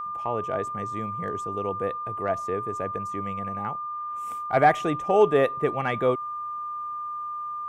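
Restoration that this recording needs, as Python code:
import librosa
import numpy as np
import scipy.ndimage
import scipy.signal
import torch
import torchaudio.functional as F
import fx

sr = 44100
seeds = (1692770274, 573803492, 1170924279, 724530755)

y = fx.notch(x, sr, hz=1200.0, q=30.0)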